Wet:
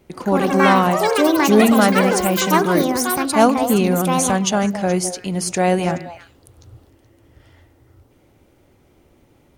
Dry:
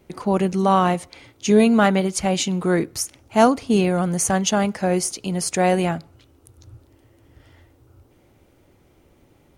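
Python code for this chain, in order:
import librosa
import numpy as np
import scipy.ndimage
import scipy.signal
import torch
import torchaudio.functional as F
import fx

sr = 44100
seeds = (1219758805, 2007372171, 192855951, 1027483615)

p1 = x + fx.echo_stepped(x, sr, ms=106, hz=260.0, octaves=1.4, feedback_pct=70, wet_db=-6, dry=0)
p2 = fx.echo_pitch(p1, sr, ms=134, semitones=6, count=3, db_per_echo=-3.0)
y = p2 * 10.0 ** (1.0 / 20.0)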